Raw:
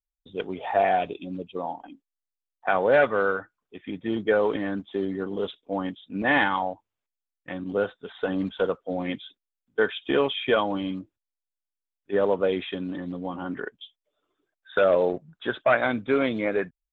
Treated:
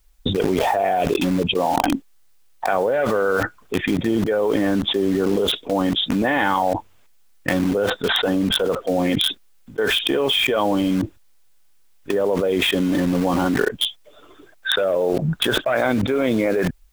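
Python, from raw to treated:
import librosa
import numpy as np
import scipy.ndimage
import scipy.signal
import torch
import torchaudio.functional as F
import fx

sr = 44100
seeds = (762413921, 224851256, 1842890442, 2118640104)

p1 = fx.dynamic_eq(x, sr, hz=480.0, q=0.75, threshold_db=-35.0, ratio=4.0, max_db=5)
p2 = fx.quant_dither(p1, sr, seeds[0], bits=6, dither='none')
p3 = p1 + (p2 * 10.0 ** (-3.0 / 20.0))
p4 = fx.low_shelf(p3, sr, hz=88.0, db=8.5)
p5 = fx.env_flatten(p4, sr, amount_pct=100)
y = p5 * 10.0 ** (-12.0 / 20.0)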